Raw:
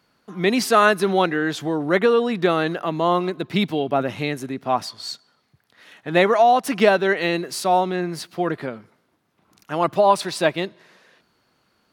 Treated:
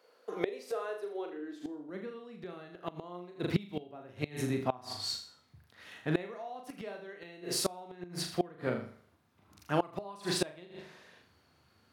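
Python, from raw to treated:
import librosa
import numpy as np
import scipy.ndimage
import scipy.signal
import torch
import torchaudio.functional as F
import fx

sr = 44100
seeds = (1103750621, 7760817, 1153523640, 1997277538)

p1 = fx.dynamic_eq(x, sr, hz=390.0, q=3.3, threshold_db=-32.0, ratio=4.0, max_db=4)
p2 = p1 + fx.room_flutter(p1, sr, wall_m=6.8, rt60_s=0.47, dry=0)
p3 = fx.filter_sweep_highpass(p2, sr, from_hz=480.0, to_hz=81.0, start_s=1.09, end_s=2.9, q=5.6)
p4 = fx.gate_flip(p3, sr, shuts_db=-11.0, range_db=-25)
y = F.gain(torch.from_numpy(p4), -5.0).numpy()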